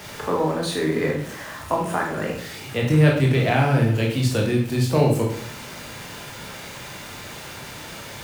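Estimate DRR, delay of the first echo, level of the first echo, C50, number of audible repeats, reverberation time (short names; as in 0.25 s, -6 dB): -1.0 dB, none, none, 5.0 dB, none, 0.55 s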